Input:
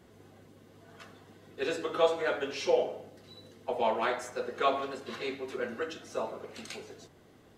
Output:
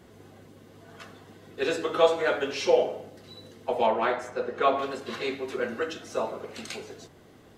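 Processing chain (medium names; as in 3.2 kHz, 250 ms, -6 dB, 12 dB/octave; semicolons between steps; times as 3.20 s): 3.86–4.79 s: treble shelf 4 kHz -12 dB; trim +5 dB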